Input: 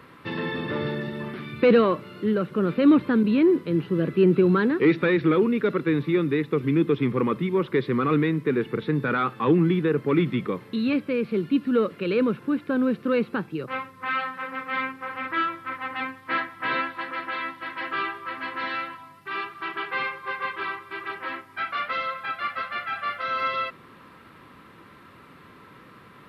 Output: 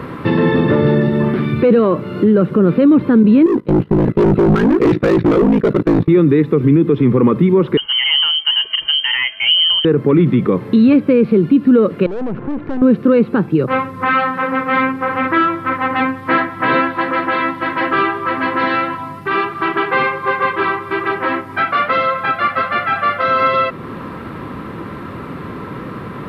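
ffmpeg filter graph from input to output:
ffmpeg -i in.wav -filter_complex "[0:a]asettb=1/sr,asplit=3[link_01][link_02][link_03];[link_01]atrim=end=3.464[link_04];[link_02]atrim=start=3.46:end=6.08,asetpts=PTS-STARTPTS,afade=type=in:duration=0.004:curve=qsin,afade=type=out:start_time=2.616:duration=0.004:curve=qsin,agate=range=-16dB:threshold=-31dB:ratio=16:release=100:detection=peak,aeval=exprs='val(0)*sin(2*PI*27*n/s)':channel_layout=same,asoftclip=type=hard:threshold=-25.5dB[link_05];[link_03]atrim=start=6.076[link_06];[link_04][link_05]acrossfade=duration=0.004:curve1=hsin:curve2=qsin[link_07];[link_07][link_06]acrossfade=duration=0.004:curve1=qsin:curve2=hsin,asettb=1/sr,asplit=3[link_08][link_09][link_10];[link_08]atrim=end=7.774[link_11];[link_09]atrim=start=7.77:end=9.85,asetpts=PTS-STARTPTS,afade=type=in:duration=0.004:curve=qsin,afade=type=out:start_time=2.076:duration=0.004:curve=qsin,equalizer=frequency=2500:width_type=o:width=1.9:gain=-10.5,lowpass=frequency=2800:width_type=q:width=0.5098,lowpass=frequency=2800:width_type=q:width=0.6013,lowpass=frequency=2800:width_type=q:width=0.9,lowpass=frequency=2800:width_type=q:width=2.563,afreqshift=-3300,asuperstop=centerf=740:order=4:qfactor=6.7[link_12];[link_10]atrim=start=9.846[link_13];[link_11][link_12]acrossfade=duration=0.004:curve1=hsin:curve2=qsin[link_14];[link_14][link_13]acrossfade=duration=0.004:curve1=qsin:curve2=hsin,asettb=1/sr,asplit=3[link_15][link_16][link_17];[link_15]atrim=end=12.064[link_18];[link_16]atrim=start=12.06:end=12.82,asetpts=PTS-STARTPTS,afade=type=in:duration=0.004:curve=qsin,afade=type=out:start_time=0.756:duration=0.004:curve=qsin,lowpass=2000,acompressor=threshold=-30dB:ratio=6:attack=3.2:release=140:knee=1:detection=peak,aeval=exprs='(tanh(100*val(0)+0.75)-tanh(0.75))/100':channel_layout=same[link_19];[link_17]atrim=start=12.816[link_20];[link_18][link_19]acrossfade=duration=0.004:curve1=hsin:curve2=qsin[link_21];[link_21][link_20]acrossfade=duration=0.004:curve1=qsin:curve2=hsin,tiltshelf=frequency=1300:gain=7,acompressor=threshold=-38dB:ratio=1.5,alimiter=level_in=20.5dB:limit=-1dB:release=50:level=0:latency=1,volume=-3dB" out.wav

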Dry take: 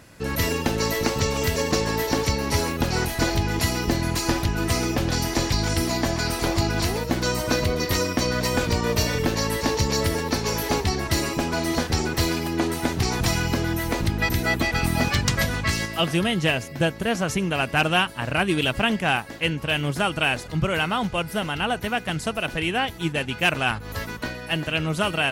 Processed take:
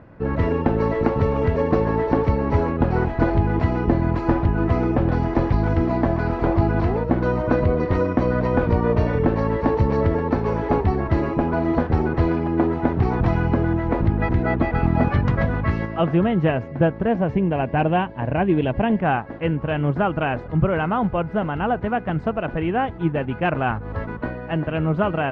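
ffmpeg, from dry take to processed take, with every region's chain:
ffmpeg -i in.wav -filter_complex "[0:a]asettb=1/sr,asplit=3[link_01][link_02][link_03];[link_01]atrim=end=17.084[link_04];[link_02]atrim=start=17.08:end=18.99,asetpts=PTS-STARTPTS,afade=type=in:duration=0.004:curve=qsin,afade=type=out:start_time=1.906:duration=0.004:curve=qsin,acrossover=split=5600[link_05][link_06];[link_06]acompressor=threshold=-52dB:ratio=4:attack=1:release=60[link_07];[link_05][link_07]amix=inputs=2:normalize=0,equalizer=frequency=1300:width=4.4:gain=-12[link_08];[link_03]atrim=start=18.986[link_09];[link_04][link_08]acrossfade=duration=0.004:curve1=hsin:curve2=qsin[link_10];[link_10][link_09]acrossfade=duration=0.004:curve1=qsin:curve2=hsin,lowpass=1200,aemphasis=mode=reproduction:type=50fm,volume=4.5dB" out.wav

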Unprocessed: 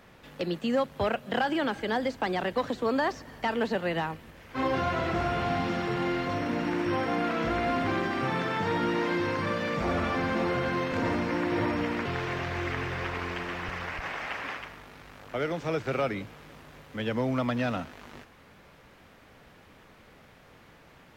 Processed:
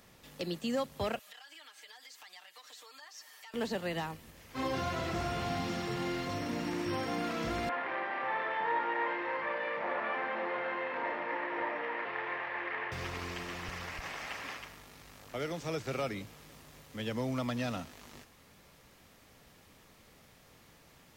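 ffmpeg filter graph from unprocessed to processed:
ffmpeg -i in.wav -filter_complex "[0:a]asettb=1/sr,asplit=3[link_01][link_02][link_03];[link_01]atrim=end=1.194[link_04];[link_02]atrim=start=1.19:end=3.54,asetpts=PTS-STARTPTS,afade=type=in:duration=0.004:curve=qsin,afade=type=out:start_time=2.346:duration=0.004:curve=qsin,highpass=1400,acompressor=threshold=-49dB:ratio=4:attack=3.2:release=140:knee=1:detection=peak,aecho=1:1:6.6:0.87,atrim=end_sample=103635[link_05];[link_03]atrim=start=3.536[link_06];[link_04][link_05]acrossfade=duration=0.004:curve1=hsin:curve2=qsin[link_07];[link_07][link_06]acrossfade=duration=0.004:curve1=qsin:curve2=hsin,asettb=1/sr,asplit=3[link_08][link_09][link_10];[link_08]atrim=end=7.694[link_11];[link_09]atrim=start=7.69:end=12.92,asetpts=PTS-STARTPTS,afade=type=in:duration=0.004:curve=qsin,afade=type=out:start_time=5.226:duration=0.004:curve=qsin,aeval=exprs='clip(val(0),-1,0.0355)':channel_layout=same,highpass=470,equalizer=frequency=560:width_type=q:width=4:gain=4,equalizer=frequency=930:width_type=q:width=4:gain=8,equalizer=frequency=1800:width_type=q:width=4:gain=8,lowpass=frequency=2600:width=0.5412,lowpass=frequency=2600:width=1.3066,asplit=2[link_12][link_13];[link_13]adelay=32,volume=-6dB[link_14];[link_12][link_14]amix=inputs=2:normalize=0,atrim=end_sample=230643[link_15];[link_10]atrim=start=12.916[link_16];[link_11][link_15]acrossfade=duration=0.004:curve1=hsin:curve2=qsin[link_17];[link_17][link_16]acrossfade=duration=0.004:curve1=qsin:curve2=hsin,bass=frequency=250:gain=2,treble=frequency=4000:gain=13,bandreject=frequency=1500:width=17,volume=-7dB" out.wav

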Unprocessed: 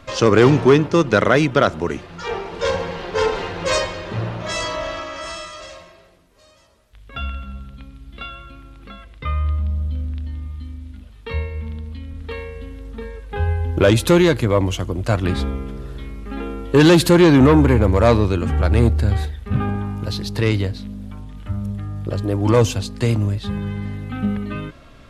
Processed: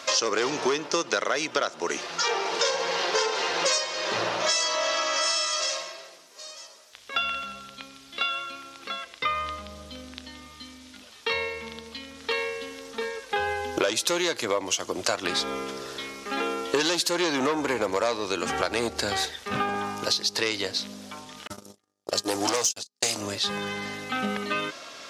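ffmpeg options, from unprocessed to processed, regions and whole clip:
ffmpeg -i in.wav -filter_complex "[0:a]asettb=1/sr,asplit=3[link_01][link_02][link_03];[link_01]atrim=end=21.474[link_04];[link_02]atrim=start=21.47:end=23.21,asetpts=PTS-STARTPTS,afade=type=in:duration=0.004:curve=qsin,afade=type=out:start_time=1.736:duration=0.004:curve=qsin,agate=range=-50dB:threshold=-23dB:ratio=16:release=100:detection=peak,bass=frequency=250:gain=0,treble=frequency=4000:gain=11,volume=15.5dB,asoftclip=hard,volume=-15.5dB[link_05];[link_03]atrim=start=23.206[link_06];[link_04][link_05]acrossfade=duration=0.004:curve1=hsin:curve2=qsin[link_07];[link_07][link_06]acrossfade=duration=0.004:curve1=qsin:curve2=hsin,highpass=500,equalizer=frequency=5700:width_type=o:width=1.1:gain=13,acompressor=threshold=-28dB:ratio=10,volume=6dB" out.wav

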